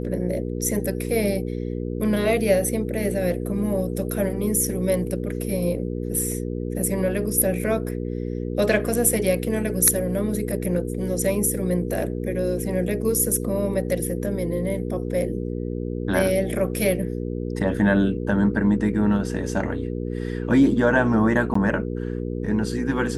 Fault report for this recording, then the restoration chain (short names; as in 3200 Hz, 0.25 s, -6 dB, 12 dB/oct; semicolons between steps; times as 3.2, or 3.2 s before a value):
hum 60 Hz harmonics 8 -28 dBFS
21.54–21.55 gap 14 ms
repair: de-hum 60 Hz, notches 8; interpolate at 21.54, 14 ms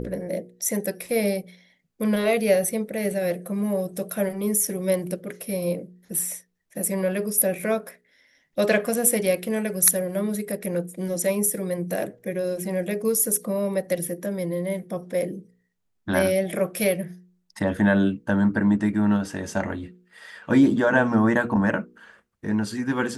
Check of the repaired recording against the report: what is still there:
none